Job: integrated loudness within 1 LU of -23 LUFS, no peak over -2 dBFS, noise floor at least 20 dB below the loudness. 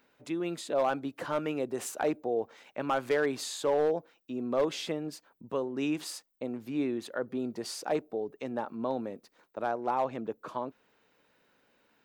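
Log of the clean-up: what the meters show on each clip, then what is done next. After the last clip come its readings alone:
clipped samples 0.3%; clipping level -20.5 dBFS; loudness -33.0 LUFS; peak level -20.5 dBFS; loudness target -23.0 LUFS
-> clip repair -20.5 dBFS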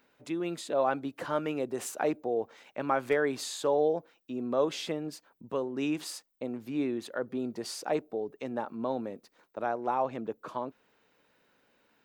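clipped samples 0.0%; loudness -33.0 LUFS; peak level -14.5 dBFS; loudness target -23.0 LUFS
-> trim +10 dB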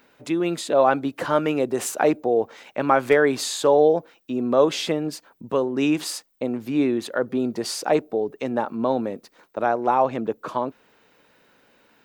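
loudness -23.0 LUFS; peak level -4.5 dBFS; noise floor -61 dBFS

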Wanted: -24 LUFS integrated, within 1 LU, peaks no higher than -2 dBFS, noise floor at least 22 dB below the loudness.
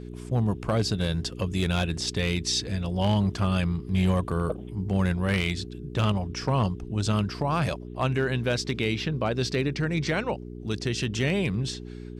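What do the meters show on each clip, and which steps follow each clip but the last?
clipped samples 0.5%; clipping level -17.0 dBFS; hum 60 Hz; highest harmonic 420 Hz; hum level -37 dBFS; loudness -27.0 LUFS; peak level -17.0 dBFS; loudness target -24.0 LUFS
-> clip repair -17 dBFS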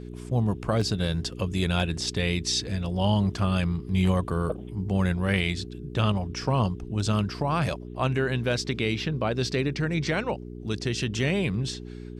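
clipped samples 0.0%; hum 60 Hz; highest harmonic 420 Hz; hum level -37 dBFS
-> de-hum 60 Hz, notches 7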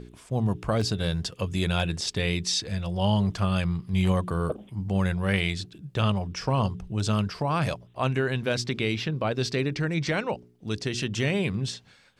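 hum not found; loudness -27.5 LUFS; peak level -9.5 dBFS; loudness target -24.0 LUFS
-> trim +3.5 dB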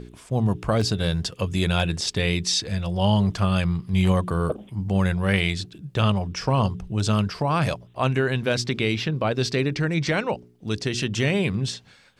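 loudness -24.0 LUFS; peak level -6.0 dBFS; noise floor -53 dBFS

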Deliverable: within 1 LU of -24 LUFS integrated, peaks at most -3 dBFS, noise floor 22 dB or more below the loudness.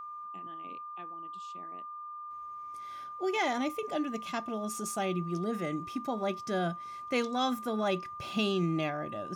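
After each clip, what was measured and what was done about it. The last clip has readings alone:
steady tone 1.2 kHz; tone level -40 dBFS; loudness -34.5 LUFS; peak level -18.0 dBFS; loudness target -24.0 LUFS
-> band-stop 1.2 kHz, Q 30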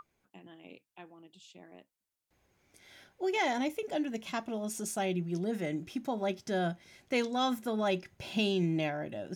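steady tone not found; loudness -33.5 LUFS; peak level -18.5 dBFS; loudness target -24.0 LUFS
-> trim +9.5 dB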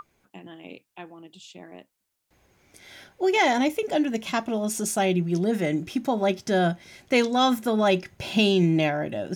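loudness -24.0 LUFS; peak level -9.0 dBFS; noise floor -79 dBFS

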